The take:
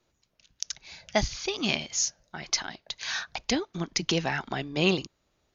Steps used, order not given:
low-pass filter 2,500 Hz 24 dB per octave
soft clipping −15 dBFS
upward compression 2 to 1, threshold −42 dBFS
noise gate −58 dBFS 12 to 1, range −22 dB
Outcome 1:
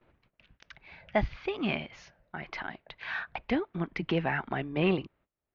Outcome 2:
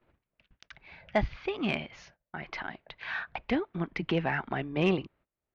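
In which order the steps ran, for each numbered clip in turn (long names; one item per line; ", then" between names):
upward compression, then noise gate, then soft clipping, then low-pass filter
upward compression, then low-pass filter, then noise gate, then soft clipping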